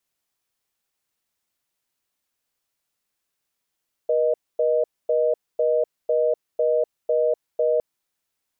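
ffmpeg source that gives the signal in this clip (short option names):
-f lavfi -i "aevalsrc='0.1*(sin(2*PI*480*t)+sin(2*PI*620*t))*clip(min(mod(t,0.5),0.25-mod(t,0.5))/0.005,0,1)':d=3.71:s=44100"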